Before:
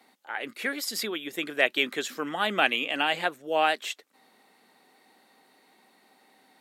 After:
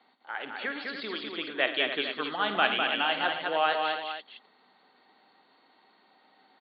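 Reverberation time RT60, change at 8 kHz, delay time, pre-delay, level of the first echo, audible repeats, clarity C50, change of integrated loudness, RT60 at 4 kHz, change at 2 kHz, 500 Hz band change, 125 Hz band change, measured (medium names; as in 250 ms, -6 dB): no reverb, under -40 dB, 53 ms, no reverb, -11.0 dB, 5, no reverb, -1.5 dB, no reverb, -1.5 dB, -1.5 dB, -3.5 dB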